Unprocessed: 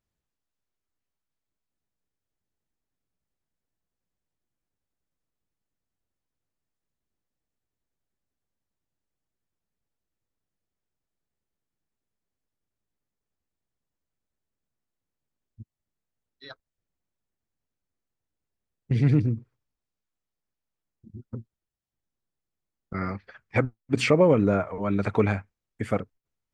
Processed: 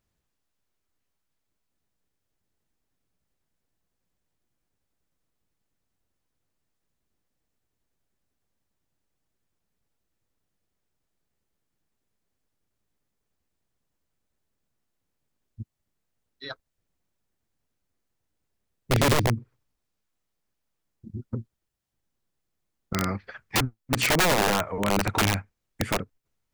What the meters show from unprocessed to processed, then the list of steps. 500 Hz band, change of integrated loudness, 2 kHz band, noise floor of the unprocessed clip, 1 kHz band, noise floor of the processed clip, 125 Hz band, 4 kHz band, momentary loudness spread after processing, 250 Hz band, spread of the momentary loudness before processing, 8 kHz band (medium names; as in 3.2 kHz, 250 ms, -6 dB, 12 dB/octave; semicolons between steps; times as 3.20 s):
-3.5 dB, -0.5 dB, +6.0 dB, under -85 dBFS, +6.0 dB, -80 dBFS, -2.5 dB, +11.0 dB, 21 LU, -3.5 dB, 21 LU, no reading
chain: dynamic bell 610 Hz, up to -3 dB, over -32 dBFS, Q 1.2; in parallel at +1 dB: compression 6:1, threshold -35 dBFS, peak gain reduction 18 dB; on the sum: integer overflow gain 15.5 dB